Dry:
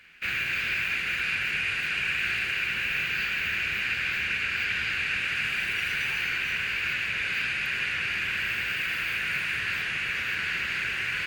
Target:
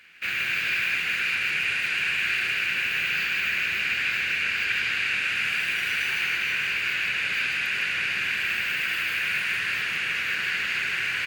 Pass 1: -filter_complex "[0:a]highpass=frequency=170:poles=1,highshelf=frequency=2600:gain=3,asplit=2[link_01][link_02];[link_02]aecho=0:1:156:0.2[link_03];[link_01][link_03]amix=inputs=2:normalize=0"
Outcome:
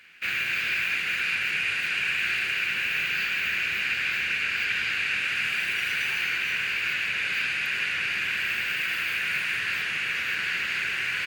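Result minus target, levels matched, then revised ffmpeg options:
echo-to-direct −9.5 dB
-filter_complex "[0:a]highpass=frequency=170:poles=1,highshelf=frequency=2600:gain=3,asplit=2[link_01][link_02];[link_02]aecho=0:1:156:0.596[link_03];[link_01][link_03]amix=inputs=2:normalize=0"

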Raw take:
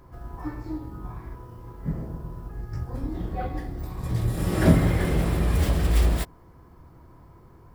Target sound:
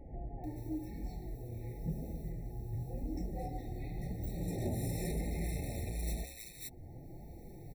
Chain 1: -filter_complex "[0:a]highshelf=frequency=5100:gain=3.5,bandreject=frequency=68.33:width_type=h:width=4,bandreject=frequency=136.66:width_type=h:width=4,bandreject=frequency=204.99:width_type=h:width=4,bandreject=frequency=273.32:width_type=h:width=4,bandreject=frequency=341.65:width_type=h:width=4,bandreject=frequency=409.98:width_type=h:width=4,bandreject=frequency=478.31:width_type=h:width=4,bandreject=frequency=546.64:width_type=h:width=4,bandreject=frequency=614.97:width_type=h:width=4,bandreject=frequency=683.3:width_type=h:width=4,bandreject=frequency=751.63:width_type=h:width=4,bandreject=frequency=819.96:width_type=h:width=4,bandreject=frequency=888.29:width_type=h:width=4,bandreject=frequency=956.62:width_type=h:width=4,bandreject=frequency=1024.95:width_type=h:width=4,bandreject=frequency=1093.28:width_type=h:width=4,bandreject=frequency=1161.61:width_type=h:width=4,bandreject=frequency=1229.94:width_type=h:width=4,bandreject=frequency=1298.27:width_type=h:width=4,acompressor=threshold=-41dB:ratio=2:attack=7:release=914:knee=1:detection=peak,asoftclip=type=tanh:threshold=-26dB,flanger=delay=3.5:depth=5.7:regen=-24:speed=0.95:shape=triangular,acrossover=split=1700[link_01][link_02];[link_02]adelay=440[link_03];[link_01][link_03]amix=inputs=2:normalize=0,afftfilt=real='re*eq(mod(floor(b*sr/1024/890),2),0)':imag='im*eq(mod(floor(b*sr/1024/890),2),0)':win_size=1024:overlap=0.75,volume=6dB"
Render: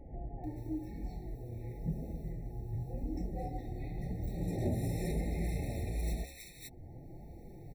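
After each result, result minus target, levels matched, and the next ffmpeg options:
soft clipping: distortion −9 dB; 8,000 Hz band −5.5 dB
-filter_complex "[0:a]highshelf=frequency=5100:gain=3.5,bandreject=frequency=68.33:width_type=h:width=4,bandreject=frequency=136.66:width_type=h:width=4,bandreject=frequency=204.99:width_type=h:width=4,bandreject=frequency=273.32:width_type=h:width=4,bandreject=frequency=341.65:width_type=h:width=4,bandreject=frequency=409.98:width_type=h:width=4,bandreject=frequency=478.31:width_type=h:width=4,bandreject=frequency=546.64:width_type=h:width=4,bandreject=frequency=614.97:width_type=h:width=4,bandreject=frequency=683.3:width_type=h:width=4,bandreject=frequency=751.63:width_type=h:width=4,bandreject=frequency=819.96:width_type=h:width=4,bandreject=frequency=888.29:width_type=h:width=4,bandreject=frequency=956.62:width_type=h:width=4,bandreject=frequency=1024.95:width_type=h:width=4,bandreject=frequency=1093.28:width_type=h:width=4,bandreject=frequency=1161.61:width_type=h:width=4,bandreject=frequency=1229.94:width_type=h:width=4,bandreject=frequency=1298.27:width_type=h:width=4,acompressor=threshold=-41dB:ratio=2:attack=7:release=914:knee=1:detection=peak,asoftclip=type=tanh:threshold=-32.5dB,flanger=delay=3.5:depth=5.7:regen=-24:speed=0.95:shape=triangular,acrossover=split=1700[link_01][link_02];[link_02]adelay=440[link_03];[link_01][link_03]amix=inputs=2:normalize=0,afftfilt=real='re*eq(mod(floor(b*sr/1024/890),2),0)':imag='im*eq(mod(floor(b*sr/1024/890),2),0)':win_size=1024:overlap=0.75,volume=6dB"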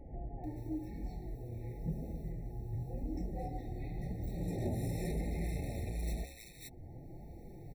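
8,000 Hz band −5.5 dB
-filter_complex "[0:a]highshelf=frequency=5100:gain=11.5,bandreject=frequency=68.33:width_type=h:width=4,bandreject=frequency=136.66:width_type=h:width=4,bandreject=frequency=204.99:width_type=h:width=4,bandreject=frequency=273.32:width_type=h:width=4,bandreject=frequency=341.65:width_type=h:width=4,bandreject=frequency=409.98:width_type=h:width=4,bandreject=frequency=478.31:width_type=h:width=4,bandreject=frequency=546.64:width_type=h:width=4,bandreject=frequency=614.97:width_type=h:width=4,bandreject=frequency=683.3:width_type=h:width=4,bandreject=frequency=751.63:width_type=h:width=4,bandreject=frequency=819.96:width_type=h:width=4,bandreject=frequency=888.29:width_type=h:width=4,bandreject=frequency=956.62:width_type=h:width=4,bandreject=frequency=1024.95:width_type=h:width=4,bandreject=frequency=1093.28:width_type=h:width=4,bandreject=frequency=1161.61:width_type=h:width=4,bandreject=frequency=1229.94:width_type=h:width=4,bandreject=frequency=1298.27:width_type=h:width=4,acompressor=threshold=-41dB:ratio=2:attack=7:release=914:knee=1:detection=peak,asoftclip=type=tanh:threshold=-32.5dB,flanger=delay=3.5:depth=5.7:regen=-24:speed=0.95:shape=triangular,acrossover=split=1700[link_01][link_02];[link_02]adelay=440[link_03];[link_01][link_03]amix=inputs=2:normalize=0,afftfilt=real='re*eq(mod(floor(b*sr/1024/890),2),0)':imag='im*eq(mod(floor(b*sr/1024/890),2),0)':win_size=1024:overlap=0.75,volume=6dB"

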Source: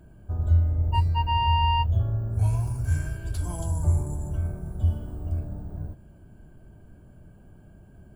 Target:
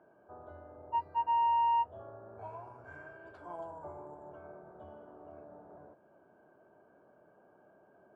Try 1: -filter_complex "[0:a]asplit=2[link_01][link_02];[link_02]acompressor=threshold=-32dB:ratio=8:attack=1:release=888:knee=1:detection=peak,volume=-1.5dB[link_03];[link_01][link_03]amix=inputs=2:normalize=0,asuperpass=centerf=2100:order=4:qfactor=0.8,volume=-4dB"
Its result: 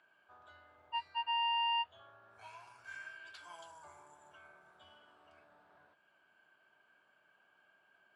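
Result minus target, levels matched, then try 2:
2,000 Hz band +14.0 dB
-filter_complex "[0:a]asplit=2[link_01][link_02];[link_02]acompressor=threshold=-32dB:ratio=8:attack=1:release=888:knee=1:detection=peak,volume=-1.5dB[link_03];[link_01][link_03]amix=inputs=2:normalize=0,asuperpass=centerf=810:order=4:qfactor=0.8,volume=-4dB"

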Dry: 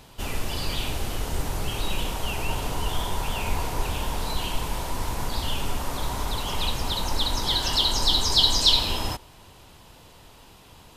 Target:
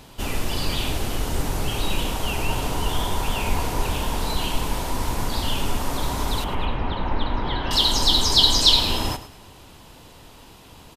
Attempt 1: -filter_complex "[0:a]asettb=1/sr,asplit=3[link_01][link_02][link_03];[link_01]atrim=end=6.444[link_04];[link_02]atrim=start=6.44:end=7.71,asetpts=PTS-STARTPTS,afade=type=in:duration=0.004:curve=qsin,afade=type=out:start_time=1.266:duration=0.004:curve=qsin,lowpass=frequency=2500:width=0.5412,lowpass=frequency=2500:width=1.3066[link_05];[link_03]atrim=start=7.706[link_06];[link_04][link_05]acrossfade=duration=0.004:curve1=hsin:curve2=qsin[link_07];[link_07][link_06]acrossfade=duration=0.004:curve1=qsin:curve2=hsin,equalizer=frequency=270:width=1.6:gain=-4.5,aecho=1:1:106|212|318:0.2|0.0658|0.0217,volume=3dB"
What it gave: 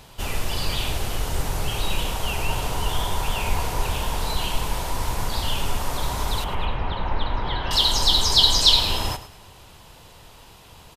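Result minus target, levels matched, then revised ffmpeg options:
250 Hz band −5.5 dB
-filter_complex "[0:a]asettb=1/sr,asplit=3[link_01][link_02][link_03];[link_01]atrim=end=6.444[link_04];[link_02]atrim=start=6.44:end=7.71,asetpts=PTS-STARTPTS,afade=type=in:duration=0.004:curve=qsin,afade=type=out:start_time=1.266:duration=0.004:curve=qsin,lowpass=frequency=2500:width=0.5412,lowpass=frequency=2500:width=1.3066[link_05];[link_03]atrim=start=7.706[link_06];[link_04][link_05]acrossfade=duration=0.004:curve1=hsin:curve2=qsin[link_07];[link_07][link_06]acrossfade=duration=0.004:curve1=qsin:curve2=hsin,equalizer=frequency=270:width=1.6:gain=3.5,aecho=1:1:106|212|318:0.2|0.0658|0.0217,volume=3dB"

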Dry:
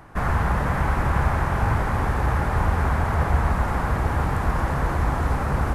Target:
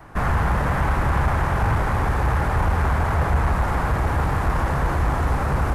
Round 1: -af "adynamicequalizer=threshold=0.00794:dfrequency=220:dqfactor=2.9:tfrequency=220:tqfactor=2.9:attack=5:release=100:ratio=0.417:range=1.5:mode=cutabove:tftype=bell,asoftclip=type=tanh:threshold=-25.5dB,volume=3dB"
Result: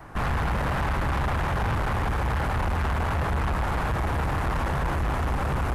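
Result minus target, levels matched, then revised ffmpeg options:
soft clipping: distortion +10 dB
-af "adynamicequalizer=threshold=0.00794:dfrequency=220:dqfactor=2.9:tfrequency=220:tqfactor=2.9:attack=5:release=100:ratio=0.417:range=1.5:mode=cutabove:tftype=bell,asoftclip=type=tanh:threshold=-15dB,volume=3dB"

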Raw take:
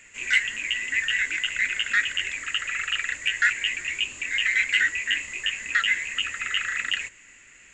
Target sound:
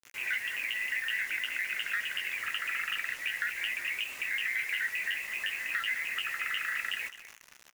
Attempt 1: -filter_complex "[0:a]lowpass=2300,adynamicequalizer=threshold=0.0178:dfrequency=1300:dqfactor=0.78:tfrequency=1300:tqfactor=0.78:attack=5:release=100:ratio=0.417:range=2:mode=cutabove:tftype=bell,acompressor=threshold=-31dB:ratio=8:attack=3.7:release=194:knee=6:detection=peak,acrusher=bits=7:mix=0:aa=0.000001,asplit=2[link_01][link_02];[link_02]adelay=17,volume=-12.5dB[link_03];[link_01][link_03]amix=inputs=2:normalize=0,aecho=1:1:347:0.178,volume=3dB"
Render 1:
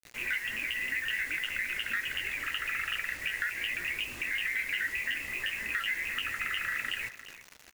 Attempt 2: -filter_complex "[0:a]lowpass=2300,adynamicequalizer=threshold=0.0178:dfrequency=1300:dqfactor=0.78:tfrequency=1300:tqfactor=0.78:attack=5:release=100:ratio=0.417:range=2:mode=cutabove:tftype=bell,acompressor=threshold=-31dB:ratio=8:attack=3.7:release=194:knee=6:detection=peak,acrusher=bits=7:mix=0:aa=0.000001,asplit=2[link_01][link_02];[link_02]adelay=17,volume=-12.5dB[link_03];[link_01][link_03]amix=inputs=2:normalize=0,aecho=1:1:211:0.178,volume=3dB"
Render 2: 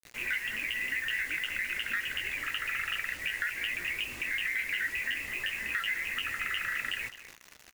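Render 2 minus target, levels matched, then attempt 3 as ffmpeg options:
500 Hz band +4.5 dB
-filter_complex "[0:a]lowpass=2300,adynamicequalizer=threshold=0.0178:dfrequency=1300:dqfactor=0.78:tfrequency=1300:tqfactor=0.78:attack=5:release=100:ratio=0.417:range=2:mode=cutabove:tftype=bell,acompressor=threshold=-31dB:ratio=8:attack=3.7:release=194:knee=6:detection=peak,highpass=650,acrusher=bits=7:mix=0:aa=0.000001,asplit=2[link_01][link_02];[link_02]adelay=17,volume=-12.5dB[link_03];[link_01][link_03]amix=inputs=2:normalize=0,aecho=1:1:211:0.178,volume=3dB"

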